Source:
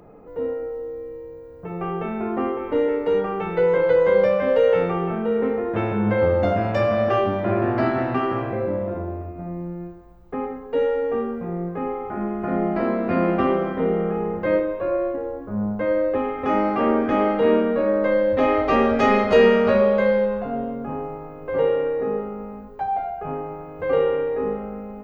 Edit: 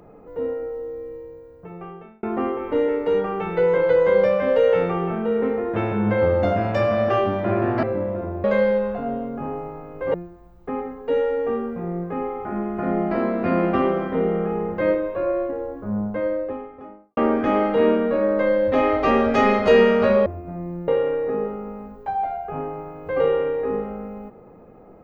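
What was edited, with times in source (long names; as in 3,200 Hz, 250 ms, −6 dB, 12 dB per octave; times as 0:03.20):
0:01.14–0:02.23: fade out
0:07.83–0:08.56: remove
0:09.17–0:09.79: swap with 0:19.91–0:21.61
0:15.47–0:16.82: fade out and dull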